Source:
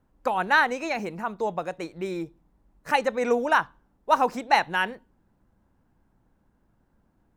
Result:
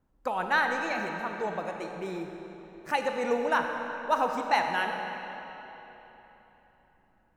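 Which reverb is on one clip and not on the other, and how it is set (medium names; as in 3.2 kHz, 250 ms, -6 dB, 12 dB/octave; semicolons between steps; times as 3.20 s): algorithmic reverb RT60 3.7 s, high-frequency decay 0.8×, pre-delay 5 ms, DRR 3.5 dB; trim -5.5 dB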